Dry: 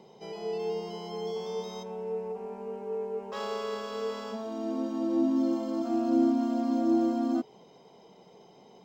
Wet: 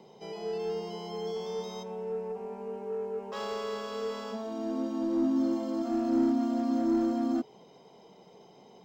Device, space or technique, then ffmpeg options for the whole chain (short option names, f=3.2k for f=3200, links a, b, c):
one-band saturation: -filter_complex "[0:a]acrossover=split=290|3600[a][b][c];[b]asoftclip=type=tanh:threshold=-27.5dB[d];[a][d][c]amix=inputs=3:normalize=0"